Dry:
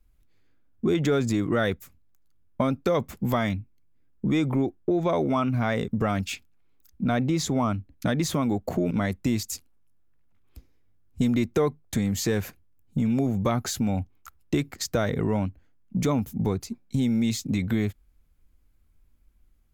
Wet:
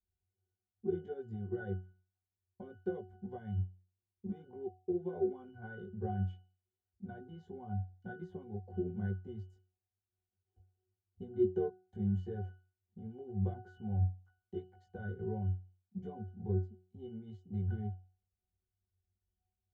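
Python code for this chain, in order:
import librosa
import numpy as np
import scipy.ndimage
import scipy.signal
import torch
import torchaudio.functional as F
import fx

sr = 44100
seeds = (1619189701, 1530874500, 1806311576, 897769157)

y = fx.peak_eq(x, sr, hz=560.0, db=11.5, octaves=1.7)
y = fx.chorus_voices(y, sr, voices=6, hz=0.77, base_ms=19, depth_ms=1.2, mix_pct=40)
y = fx.dynamic_eq(y, sr, hz=790.0, q=3.0, threshold_db=-36.0, ratio=4.0, max_db=-6)
y = fx.octave_resonator(y, sr, note='F#', decay_s=0.41)
y = fx.upward_expand(y, sr, threshold_db=-46.0, expansion=1.5)
y = y * 10.0 ** (4.5 / 20.0)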